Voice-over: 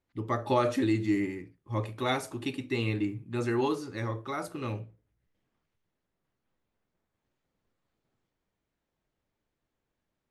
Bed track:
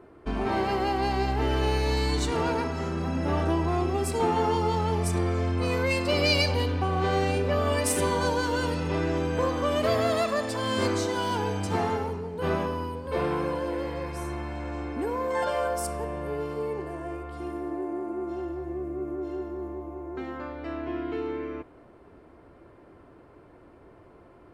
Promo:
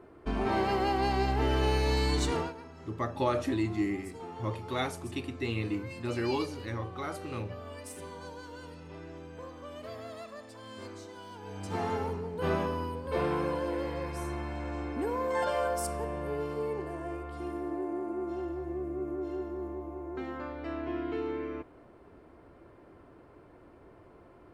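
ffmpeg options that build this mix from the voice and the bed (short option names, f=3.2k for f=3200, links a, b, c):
-filter_complex "[0:a]adelay=2700,volume=-3dB[a];[1:a]volume=14dB,afade=t=out:st=2.32:d=0.21:silence=0.149624,afade=t=in:st=11.41:d=0.66:silence=0.158489[b];[a][b]amix=inputs=2:normalize=0"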